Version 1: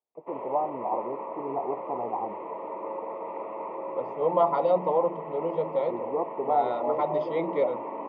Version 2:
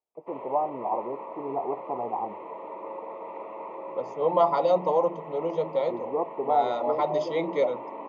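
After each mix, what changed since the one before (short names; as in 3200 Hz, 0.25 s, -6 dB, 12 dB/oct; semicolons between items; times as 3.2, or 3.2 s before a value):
background -4.0 dB; master: remove air absorption 330 m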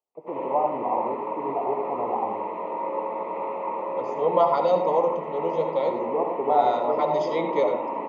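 reverb: on, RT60 0.35 s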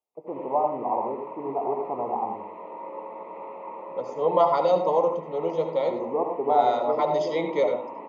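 second voice: add high shelf 5700 Hz +5 dB; background -8.5 dB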